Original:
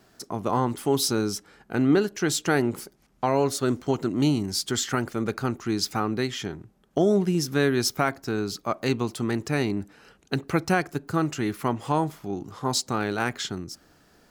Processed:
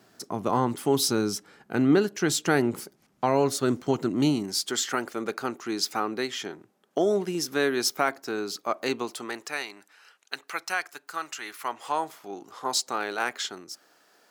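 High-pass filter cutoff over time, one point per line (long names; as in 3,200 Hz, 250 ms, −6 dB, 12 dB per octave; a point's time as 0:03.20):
0:04.13 120 Hz
0:04.64 340 Hz
0:08.97 340 Hz
0:09.70 1,100 Hz
0:11.39 1,100 Hz
0:12.28 490 Hz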